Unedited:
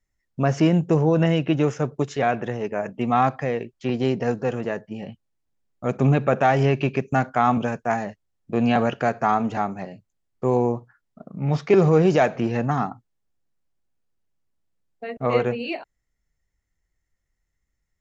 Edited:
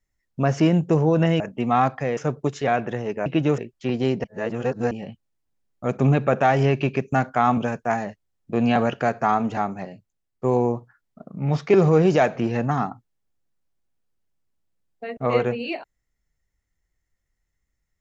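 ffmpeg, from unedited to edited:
ffmpeg -i in.wav -filter_complex "[0:a]asplit=8[link_01][link_02][link_03][link_04][link_05][link_06][link_07][link_08];[link_01]atrim=end=1.402[link_09];[link_02]atrim=start=2.808:end=3.582[link_10];[link_03]atrim=start=1.718:end=2.812[link_11];[link_04]atrim=start=1.398:end=1.722[link_12];[link_05]atrim=start=3.578:end=4.242[link_13];[link_06]atrim=start=4.238:end=4.912,asetpts=PTS-STARTPTS,areverse[link_14];[link_07]atrim=start=4.908:end=10.44,asetpts=PTS-STARTPTS,afade=type=out:start_time=4.912:duration=0.62:silence=0.501187[link_15];[link_08]atrim=start=10.44,asetpts=PTS-STARTPTS,afade=type=in:duration=0.004:curve=hsin:silence=0.501187[link_16];[link_09][link_10]acrossfade=duration=0.004:curve1=hsin:curve2=hsin[link_17];[link_17][link_11]acrossfade=duration=0.004:curve1=hsin:curve2=hsin[link_18];[link_18][link_12]acrossfade=duration=0.004:curve1=hsin:curve2=hsin[link_19];[link_19][link_13]acrossfade=duration=0.004:curve1=hsin:curve2=hsin[link_20];[link_20][link_14]acrossfade=duration=0.004:curve1=hsin:curve2=hsin[link_21];[link_15][link_16]concat=n=2:v=0:a=1[link_22];[link_21][link_22]acrossfade=duration=0.004:curve1=hsin:curve2=hsin" out.wav

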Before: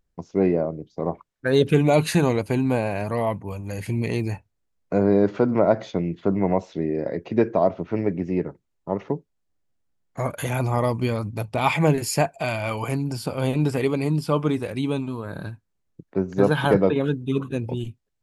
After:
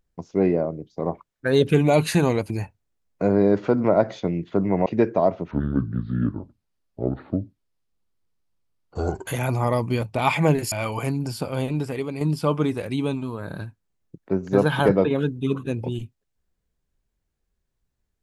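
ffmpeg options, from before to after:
ffmpeg -i in.wav -filter_complex "[0:a]asplit=8[link_01][link_02][link_03][link_04][link_05][link_06][link_07][link_08];[link_01]atrim=end=2.502[link_09];[link_02]atrim=start=4.208:end=6.572[link_10];[link_03]atrim=start=7.248:end=7.904[link_11];[link_04]atrim=start=7.9:end=10.38,asetpts=PTS-STARTPTS,asetrate=29106,aresample=44100,atrim=end_sample=165709,asetpts=PTS-STARTPTS[link_12];[link_05]atrim=start=10.376:end=11.132[link_13];[link_06]atrim=start=11.408:end=12.112[link_14];[link_07]atrim=start=12.568:end=14.06,asetpts=PTS-STARTPTS,afade=type=out:start_time=0.682:duration=0.81:curve=qua:silence=0.473151[link_15];[link_08]atrim=start=14.06,asetpts=PTS-STARTPTS,afade=type=in:duration=0.004:curve=hsin:silence=0.473151[link_16];[link_09][link_10]acrossfade=duration=0.004:curve1=hsin:curve2=hsin[link_17];[link_17][link_11]acrossfade=duration=0.004:curve1=hsin:curve2=hsin[link_18];[link_18][link_12]acrossfade=duration=0.004:curve1=hsin:curve2=hsin[link_19];[link_19][link_13]acrossfade=duration=0.004:curve1=hsin:curve2=hsin[link_20];[link_20][link_14]acrossfade=duration=0.004:curve1=hsin:curve2=hsin[link_21];[link_15][link_16]concat=n=2:v=0:a=1[link_22];[link_21][link_22]acrossfade=duration=0.004:curve1=hsin:curve2=hsin" out.wav

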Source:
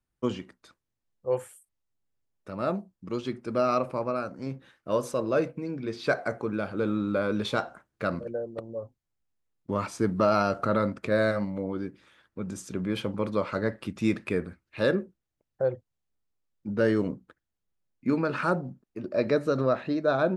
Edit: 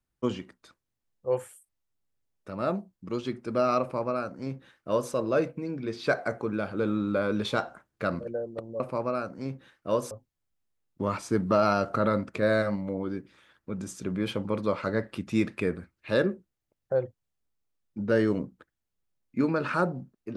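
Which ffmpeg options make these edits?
ffmpeg -i in.wav -filter_complex "[0:a]asplit=3[link_01][link_02][link_03];[link_01]atrim=end=8.802[link_04];[link_02]atrim=start=3.808:end=5.122[link_05];[link_03]atrim=start=8.798[link_06];[link_04][link_05]acrossfade=duration=0.004:curve1=hsin:curve2=hsin[link_07];[link_07][link_06]acrossfade=duration=0.004:curve1=hsin:curve2=hsin" out.wav

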